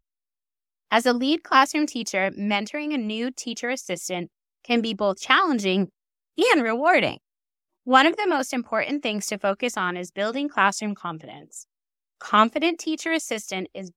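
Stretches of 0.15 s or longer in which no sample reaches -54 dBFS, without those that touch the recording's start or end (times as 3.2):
4.27–4.65
5.89–6.37
7.18–7.86
11.63–12.21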